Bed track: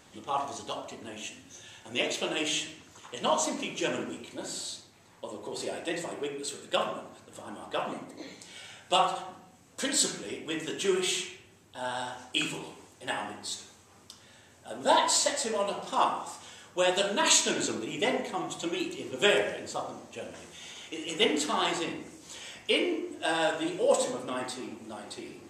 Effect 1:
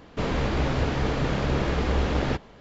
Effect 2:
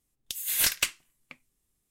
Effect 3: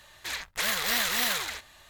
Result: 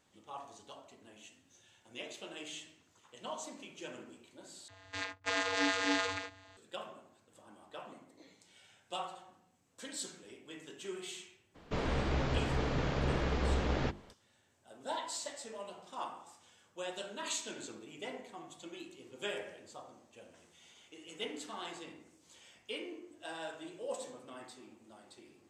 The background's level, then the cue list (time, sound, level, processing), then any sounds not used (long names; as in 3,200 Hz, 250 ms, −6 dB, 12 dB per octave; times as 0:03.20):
bed track −15.5 dB
0:04.68: overwrite with 3 −3 dB + channel vocoder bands 16, square 95.1 Hz
0:11.54: mix in 1 −7.5 dB, fades 0.02 s + mains-hum notches 50/100/150/200/250/300/350 Hz
not used: 2